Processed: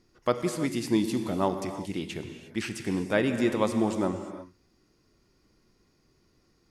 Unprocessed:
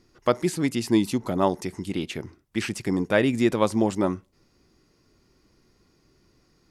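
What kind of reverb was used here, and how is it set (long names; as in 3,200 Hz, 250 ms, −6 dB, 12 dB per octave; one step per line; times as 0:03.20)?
reverb whose tail is shaped and stops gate 380 ms flat, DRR 7 dB
level −4.5 dB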